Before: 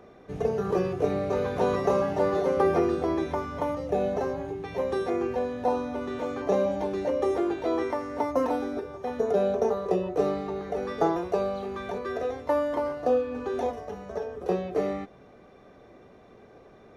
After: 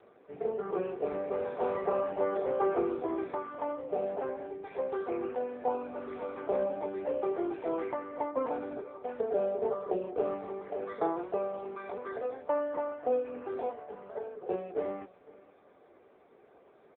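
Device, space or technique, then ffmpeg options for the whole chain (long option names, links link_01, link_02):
satellite phone: -af "highpass=310,lowpass=3000,aecho=1:1:505:0.0794,volume=-4dB" -ar 8000 -c:a libopencore_amrnb -b:a 6700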